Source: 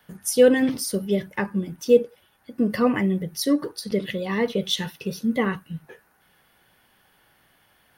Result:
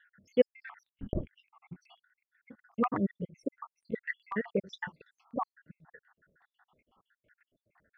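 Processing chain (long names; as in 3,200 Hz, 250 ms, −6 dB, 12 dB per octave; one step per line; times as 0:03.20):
time-frequency cells dropped at random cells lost 79%
0:00.83–0:01.34: linear-prediction vocoder at 8 kHz whisper
auto-filter low-pass saw down 8.1 Hz 980–2,200 Hz
level −5.5 dB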